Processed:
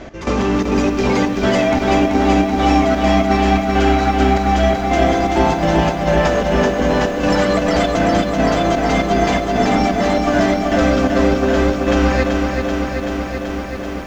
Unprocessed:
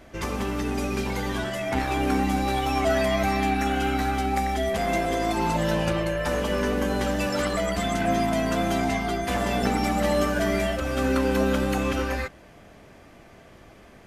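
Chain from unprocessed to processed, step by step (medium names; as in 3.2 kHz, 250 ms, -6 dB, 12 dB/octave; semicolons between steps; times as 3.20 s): steep low-pass 7.2 kHz 72 dB/octave; peaking EQ 380 Hz +4 dB 2.1 oct; in parallel at +2 dB: compressor with a negative ratio -26 dBFS; on the sum: peak limiter -9.5 dBFS, peak gain reduction 5.5 dB; saturation -14 dBFS, distortion -17 dB; trance gate "x..xxxx.xx.xx" 168 bpm -12 dB; on a send at -16.5 dB: reverberation RT60 1.0 s, pre-delay 76 ms; on the sum: bit-crushed delay 383 ms, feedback 80%, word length 9-bit, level -5 dB; trim +4 dB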